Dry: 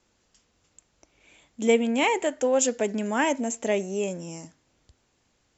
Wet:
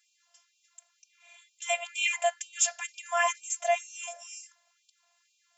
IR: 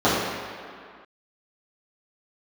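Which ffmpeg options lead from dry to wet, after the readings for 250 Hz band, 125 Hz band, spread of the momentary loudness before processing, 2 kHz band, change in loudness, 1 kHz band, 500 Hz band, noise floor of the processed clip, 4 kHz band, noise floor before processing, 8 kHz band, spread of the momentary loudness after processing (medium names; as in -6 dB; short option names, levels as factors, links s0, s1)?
under -40 dB, under -40 dB, 9 LU, -0.5 dB, -4.5 dB, -1.5 dB, -9.0 dB, -73 dBFS, 0.0 dB, -70 dBFS, no reading, 13 LU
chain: -af "afftfilt=real='hypot(re,im)*cos(PI*b)':imag='0':win_size=512:overlap=0.75,acontrast=22,afftfilt=real='re*gte(b*sr/1024,500*pow(2400/500,0.5+0.5*sin(2*PI*2.1*pts/sr)))':imag='im*gte(b*sr/1024,500*pow(2400/500,0.5+0.5*sin(2*PI*2.1*pts/sr)))':win_size=1024:overlap=0.75"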